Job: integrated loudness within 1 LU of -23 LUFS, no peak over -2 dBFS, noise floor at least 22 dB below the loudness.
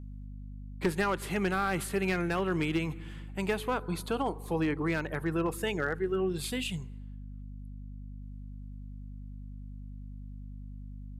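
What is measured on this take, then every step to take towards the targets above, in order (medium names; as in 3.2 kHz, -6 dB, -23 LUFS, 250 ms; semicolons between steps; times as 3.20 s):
clipped samples 0.2%; clipping level -21.0 dBFS; hum 50 Hz; highest harmonic 250 Hz; hum level -40 dBFS; loudness -31.5 LUFS; peak level -21.0 dBFS; loudness target -23.0 LUFS
-> clip repair -21 dBFS; de-hum 50 Hz, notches 5; trim +8.5 dB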